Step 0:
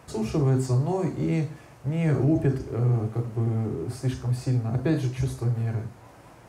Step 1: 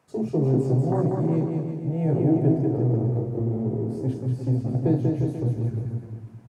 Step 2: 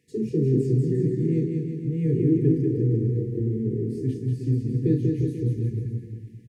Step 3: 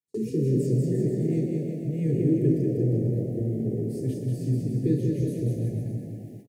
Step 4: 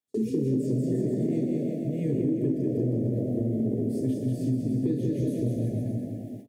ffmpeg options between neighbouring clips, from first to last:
ffmpeg -i in.wav -filter_complex "[0:a]highpass=130,afwtdn=0.0447,asplit=2[link_01][link_02];[link_02]aecho=0:1:190|351.5|488.8|605.5|704.6:0.631|0.398|0.251|0.158|0.1[link_03];[link_01][link_03]amix=inputs=2:normalize=0,volume=2dB" out.wav
ffmpeg -i in.wav -af "afftfilt=real='re*(1-between(b*sr/4096,490,1700))':imag='im*(1-between(b*sr/4096,490,1700))':win_size=4096:overlap=0.75" out.wav
ffmpeg -i in.wav -filter_complex "[0:a]aemphasis=mode=production:type=50fm,asplit=9[link_01][link_02][link_03][link_04][link_05][link_06][link_07][link_08][link_09];[link_02]adelay=121,afreqshift=43,volume=-11dB[link_10];[link_03]adelay=242,afreqshift=86,volume=-14.7dB[link_11];[link_04]adelay=363,afreqshift=129,volume=-18.5dB[link_12];[link_05]adelay=484,afreqshift=172,volume=-22.2dB[link_13];[link_06]adelay=605,afreqshift=215,volume=-26dB[link_14];[link_07]adelay=726,afreqshift=258,volume=-29.7dB[link_15];[link_08]adelay=847,afreqshift=301,volume=-33.5dB[link_16];[link_09]adelay=968,afreqshift=344,volume=-37.2dB[link_17];[link_01][link_10][link_11][link_12][link_13][link_14][link_15][link_16][link_17]amix=inputs=9:normalize=0,agate=range=-33dB:threshold=-41dB:ratio=16:detection=peak,volume=-2dB" out.wav
ffmpeg -i in.wav -af "equalizer=frequency=160:width_type=o:width=0.33:gain=-5,equalizer=frequency=250:width_type=o:width=0.33:gain=10,equalizer=frequency=630:width_type=o:width=0.33:gain=10,acompressor=threshold=-22dB:ratio=10,equalizer=frequency=3400:width=7.1:gain=6.5" out.wav

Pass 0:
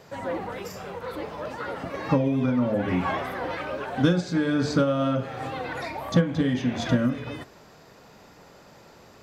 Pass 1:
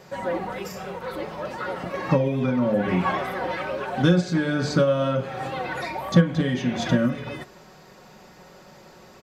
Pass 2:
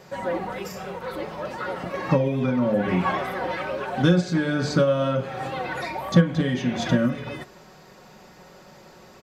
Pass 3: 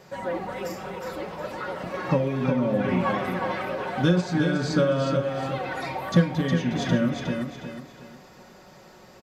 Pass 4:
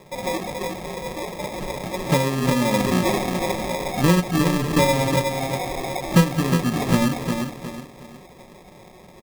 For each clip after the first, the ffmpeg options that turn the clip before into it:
ffmpeg -i in.wav -af "aecho=1:1:5.4:0.49,volume=1.5dB" out.wav
ffmpeg -i in.wav -af anull out.wav
ffmpeg -i in.wav -af "aecho=1:1:362|724|1086|1448:0.501|0.17|0.0579|0.0197,volume=-2.5dB" out.wav
ffmpeg -i in.wav -af "acrusher=samples=30:mix=1:aa=0.000001,volume=3.5dB" out.wav

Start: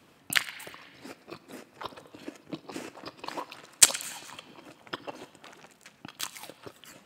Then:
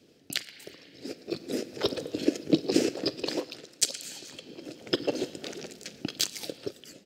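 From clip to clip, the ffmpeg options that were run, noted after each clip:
ffmpeg -i in.wav -af "dynaudnorm=framelen=310:gausssize=5:maxgain=15dB,firequalizer=gain_entry='entry(110,0);entry(420,8);entry(1000,-17);entry(1500,-7);entry(5000,7);entry(8600,-3)':delay=0.05:min_phase=1,alimiter=limit=-6dB:level=0:latency=1:release=338,volume=-3dB" out.wav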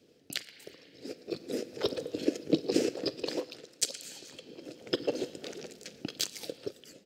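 ffmpeg -i in.wav -af "equalizer=frequency=480:width=3.5:gain=5,volume=-4.5dB" out.wav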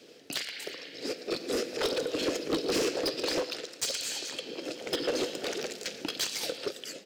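ffmpeg -i in.wav -filter_complex "[0:a]asplit=2[link_01][link_02];[link_02]highpass=frequency=720:poles=1,volume=29dB,asoftclip=type=tanh:threshold=-12dB[link_03];[link_01][link_03]amix=inputs=2:normalize=0,lowpass=frequency=6800:poles=1,volume=-6dB,volume=-8dB" out.wav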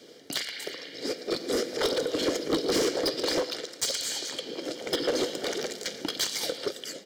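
ffmpeg -i in.wav -af "asuperstop=centerf=2600:order=4:qfactor=7.2,volume=3dB" out.wav

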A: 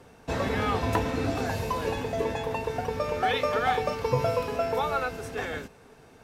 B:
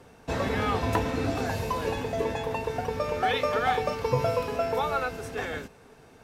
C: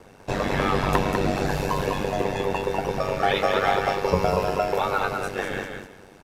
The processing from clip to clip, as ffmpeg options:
ffmpeg -i in.wav -af anull out.wav
ffmpeg -i in.wav -af "aeval=exprs='val(0)*sin(2*PI*48*n/s)':channel_layout=same,aecho=1:1:198|396|594:0.562|0.118|0.0248,volume=6dB" out.wav

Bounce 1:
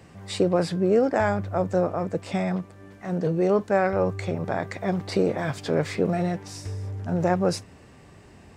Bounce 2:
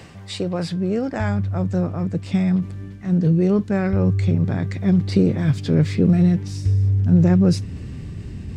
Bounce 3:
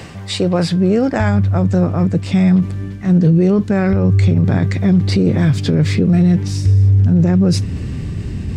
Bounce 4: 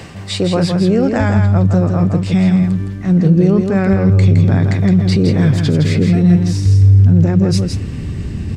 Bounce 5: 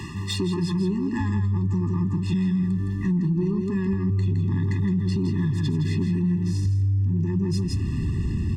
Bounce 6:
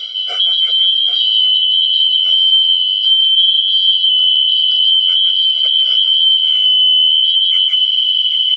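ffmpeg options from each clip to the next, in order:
ffmpeg -i in.wav -af "asubboost=boost=11:cutoff=220,areverse,acompressor=mode=upward:threshold=-20dB:ratio=2.5,areverse,equalizer=frequency=3600:width_type=o:width=1.8:gain=6,volume=-3.5dB" out.wav
ffmpeg -i in.wav -af "alimiter=limit=-15dB:level=0:latency=1:release=42,volume=9dB" out.wav
ffmpeg -i in.wav -af "aecho=1:1:164:0.531" out.wav
ffmpeg -i in.wav -af "acompressor=threshold=-19dB:ratio=6,asoftclip=type=tanh:threshold=-16dB,afftfilt=real='re*eq(mod(floor(b*sr/1024/410),2),0)':imag='im*eq(mod(floor(b*sr/1024/410),2),0)':win_size=1024:overlap=0.75" out.wav
ffmpeg -i in.wav -af "afftfilt=real='real(if(lt(b,272),68*(eq(floor(b/68),0)*2+eq(floor(b/68),1)*3+eq(floor(b/68),2)*0+eq(floor(b/68),3)*1)+mod(b,68),b),0)':imag='imag(if(lt(b,272),68*(eq(floor(b/68),0)*2+eq(floor(b/68),1)*3+eq(floor(b/68),2)*0+eq(floor(b/68),3)*1)+mod(b,68),b),0)':win_size=2048:overlap=0.75,lowpass=frequency=3400:width_type=q:width=3.9,aecho=1:1:786:0.282" out.wav

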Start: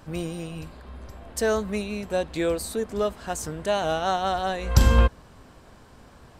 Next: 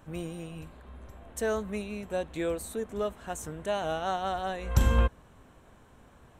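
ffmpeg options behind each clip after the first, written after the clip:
ffmpeg -i in.wav -af "equalizer=frequency=4800:width_type=o:width=0.32:gain=-14,volume=-6dB" out.wav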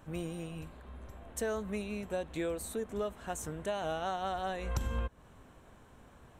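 ffmpeg -i in.wav -af "acompressor=threshold=-30dB:ratio=6,volume=-1dB" out.wav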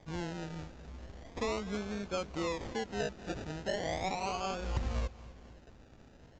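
ffmpeg -i in.wav -af "acrusher=samples=32:mix=1:aa=0.000001:lfo=1:lforange=19.2:lforate=0.38,aecho=1:1:245|490|735|980:0.126|0.0655|0.034|0.0177,aresample=16000,aresample=44100" out.wav

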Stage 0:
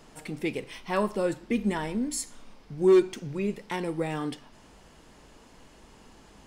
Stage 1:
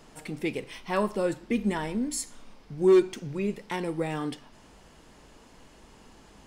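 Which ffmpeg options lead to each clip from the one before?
ffmpeg -i in.wav -af anull out.wav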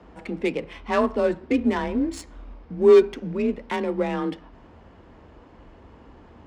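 ffmpeg -i in.wav -af "adynamicsmooth=sensitivity=4:basefreq=1900,afreqshift=32,volume=5.5dB" out.wav

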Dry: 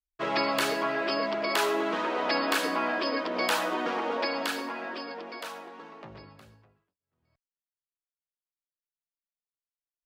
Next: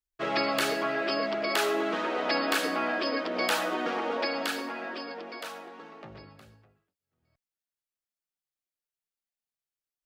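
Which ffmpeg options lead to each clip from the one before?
ffmpeg -i in.wav -af "bandreject=frequency=1000:width=8.4" out.wav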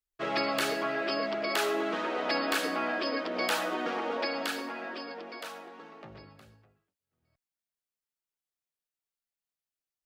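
ffmpeg -i in.wav -af "volume=17dB,asoftclip=hard,volume=-17dB,volume=-2dB" out.wav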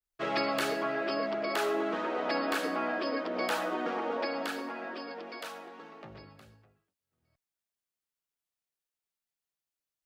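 ffmpeg -i in.wav -af "adynamicequalizer=threshold=0.00631:dfrequency=1800:dqfactor=0.7:tfrequency=1800:tqfactor=0.7:attack=5:release=100:ratio=0.375:range=3:mode=cutabove:tftype=highshelf" out.wav

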